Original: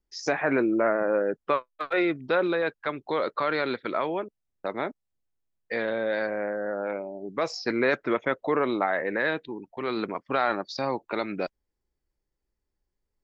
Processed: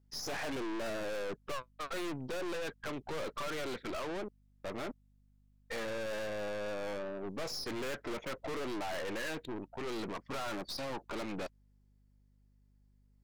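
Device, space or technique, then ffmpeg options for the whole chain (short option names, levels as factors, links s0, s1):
valve amplifier with mains hum: -af "aeval=exprs='(tanh(100*val(0)+0.6)-tanh(0.6))/100':c=same,aeval=exprs='val(0)+0.000355*(sin(2*PI*50*n/s)+sin(2*PI*2*50*n/s)/2+sin(2*PI*3*50*n/s)/3+sin(2*PI*4*50*n/s)/4+sin(2*PI*5*50*n/s)/5)':c=same,volume=1.41"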